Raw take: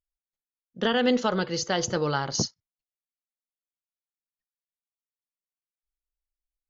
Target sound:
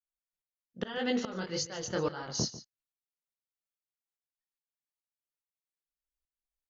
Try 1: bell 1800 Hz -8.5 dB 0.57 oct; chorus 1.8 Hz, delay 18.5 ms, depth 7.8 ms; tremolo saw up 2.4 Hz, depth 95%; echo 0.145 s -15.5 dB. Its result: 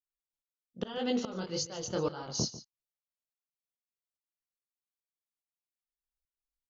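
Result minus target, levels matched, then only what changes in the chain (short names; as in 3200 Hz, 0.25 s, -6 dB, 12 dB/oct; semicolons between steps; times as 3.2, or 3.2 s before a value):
2000 Hz band -6.5 dB
change: bell 1800 Hz +2 dB 0.57 oct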